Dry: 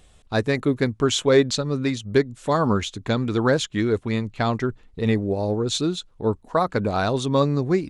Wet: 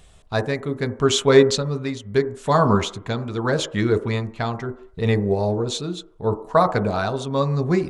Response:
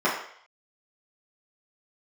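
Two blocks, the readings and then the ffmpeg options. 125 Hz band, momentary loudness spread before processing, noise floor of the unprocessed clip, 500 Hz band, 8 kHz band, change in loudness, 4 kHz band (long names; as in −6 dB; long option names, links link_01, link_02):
+1.5 dB, 6 LU, −55 dBFS, +2.0 dB, +1.0 dB, +1.0 dB, +0.5 dB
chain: -filter_complex "[0:a]tremolo=f=0.76:d=0.56,asplit=2[link_01][link_02];[1:a]atrim=start_sample=2205,lowpass=1000[link_03];[link_02][link_03]afir=irnorm=-1:irlink=0,volume=-20dB[link_04];[link_01][link_04]amix=inputs=2:normalize=0,volume=3dB"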